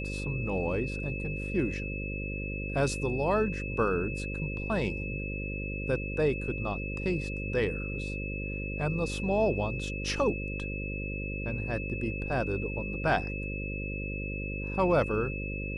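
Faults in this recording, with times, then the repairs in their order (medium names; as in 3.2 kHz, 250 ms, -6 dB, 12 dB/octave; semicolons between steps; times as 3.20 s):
buzz 50 Hz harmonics 11 -36 dBFS
whine 2.6 kHz -38 dBFS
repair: band-stop 2.6 kHz, Q 30; de-hum 50 Hz, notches 11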